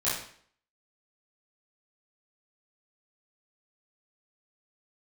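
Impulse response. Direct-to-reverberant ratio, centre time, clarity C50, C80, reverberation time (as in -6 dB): -11.0 dB, 51 ms, 2.5 dB, 7.0 dB, 0.55 s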